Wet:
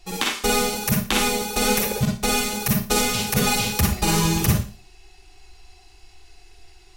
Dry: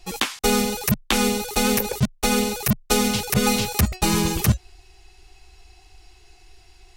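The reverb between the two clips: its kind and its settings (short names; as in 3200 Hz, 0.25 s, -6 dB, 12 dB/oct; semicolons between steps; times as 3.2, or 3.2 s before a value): Schroeder reverb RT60 0.37 s, DRR -0.5 dB; gain -2 dB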